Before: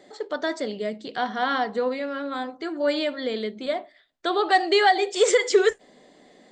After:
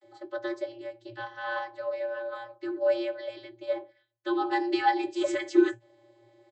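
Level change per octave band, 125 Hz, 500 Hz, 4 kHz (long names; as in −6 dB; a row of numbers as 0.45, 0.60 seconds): can't be measured, −6.5 dB, −13.5 dB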